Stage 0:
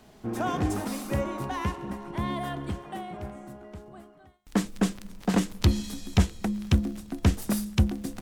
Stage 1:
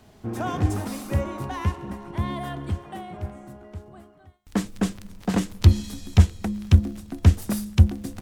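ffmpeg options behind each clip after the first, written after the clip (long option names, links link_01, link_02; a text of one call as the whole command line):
ffmpeg -i in.wav -af "equalizer=frequency=90:width=2.2:gain=11" out.wav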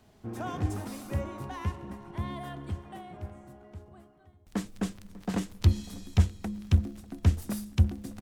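ffmpeg -i in.wav -filter_complex "[0:a]asplit=2[link_01][link_02];[link_02]adelay=595,lowpass=frequency=1100:poles=1,volume=-17.5dB,asplit=2[link_03][link_04];[link_04]adelay=595,lowpass=frequency=1100:poles=1,volume=0.4,asplit=2[link_05][link_06];[link_06]adelay=595,lowpass=frequency=1100:poles=1,volume=0.4[link_07];[link_01][link_03][link_05][link_07]amix=inputs=4:normalize=0,volume=-7.5dB" out.wav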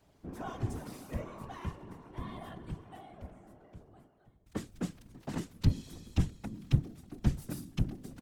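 ffmpeg -i in.wav -af "afftfilt=real='hypot(re,im)*cos(2*PI*random(0))':imag='hypot(re,im)*sin(2*PI*random(1))':win_size=512:overlap=0.75" out.wav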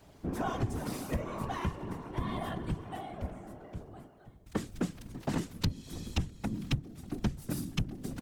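ffmpeg -i in.wav -af "acompressor=threshold=-37dB:ratio=8,volume=9dB" out.wav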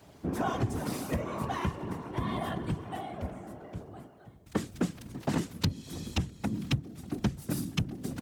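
ffmpeg -i in.wav -af "highpass=72,volume=3dB" out.wav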